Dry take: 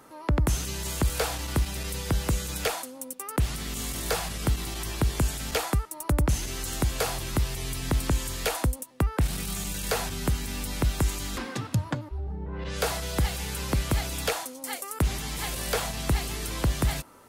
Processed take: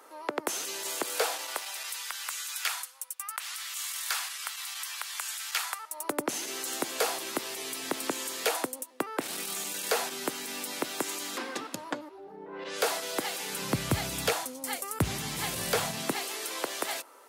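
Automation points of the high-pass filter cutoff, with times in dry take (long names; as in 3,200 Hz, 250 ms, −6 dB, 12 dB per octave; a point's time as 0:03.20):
high-pass filter 24 dB per octave
0:01.20 360 Hz
0:02.10 1,100 Hz
0:05.68 1,100 Hz
0:06.13 290 Hz
0:13.42 290 Hz
0:13.87 92 Hz
0:15.84 92 Hz
0:16.26 380 Hz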